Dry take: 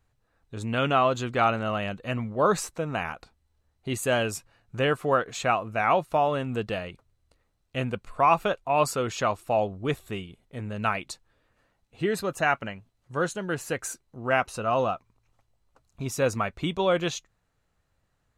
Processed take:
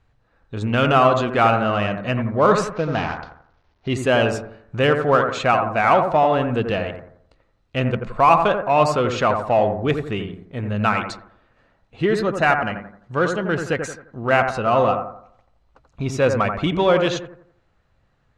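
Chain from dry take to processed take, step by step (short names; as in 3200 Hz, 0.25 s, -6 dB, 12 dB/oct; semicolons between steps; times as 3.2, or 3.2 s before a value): 2.72–3.88 CVSD 32 kbps; LPF 4200 Hz 12 dB/oct; in parallel at -7 dB: soft clip -26.5 dBFS, distortion -7 dB; on the sum: analogue delay 86 ms, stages 1024, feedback 39%, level -6 dB; gain +5 dB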